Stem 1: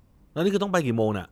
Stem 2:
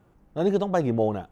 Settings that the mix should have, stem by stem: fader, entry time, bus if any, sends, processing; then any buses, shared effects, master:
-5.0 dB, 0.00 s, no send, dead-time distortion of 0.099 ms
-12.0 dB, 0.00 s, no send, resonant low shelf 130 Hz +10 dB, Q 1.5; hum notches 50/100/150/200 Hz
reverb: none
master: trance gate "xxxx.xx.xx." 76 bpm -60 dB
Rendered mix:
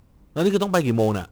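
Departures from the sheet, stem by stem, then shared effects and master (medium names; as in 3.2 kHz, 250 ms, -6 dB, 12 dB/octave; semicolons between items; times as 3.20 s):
stem 1 -5.0 dB -> +2.5 dB; master: missing trance gate "xxxx.xx.xx." 76 bpm -60 dB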